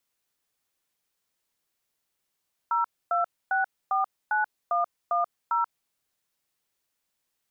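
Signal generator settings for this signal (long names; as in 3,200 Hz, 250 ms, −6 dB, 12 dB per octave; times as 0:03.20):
touch tones "02649110", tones 134 ms, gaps 266 ms, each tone −24.5 dBFS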